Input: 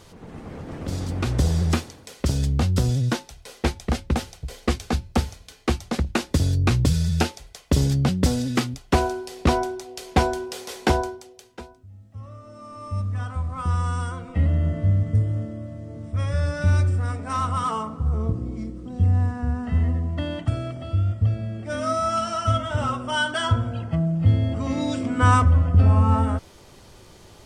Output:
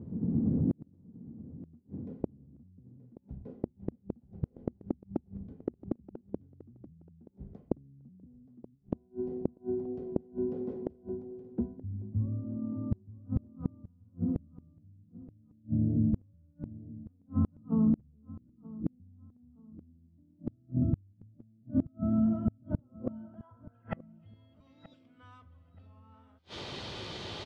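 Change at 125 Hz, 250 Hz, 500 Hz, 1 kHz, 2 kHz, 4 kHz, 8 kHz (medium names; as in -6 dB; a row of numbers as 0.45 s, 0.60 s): -16.0 dB, -6.0 dB, -12.0 dB, -26.5 dB, under -25 dB, under -15 dB, under -25 dB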